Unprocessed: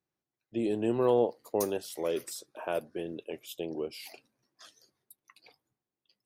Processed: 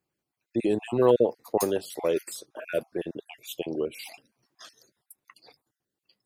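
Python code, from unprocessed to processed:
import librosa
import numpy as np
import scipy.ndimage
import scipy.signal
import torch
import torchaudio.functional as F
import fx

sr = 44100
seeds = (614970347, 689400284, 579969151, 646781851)

y = fx.spec_dropout(x, sr, seeds[0], share_pct=30)
y = fx.high_shelf(y, sr, hz=4400.0, db=-4.0, at=(1.79, 2.82))
y = F.gain(torch.from_numpy(y), 6.0).numpy()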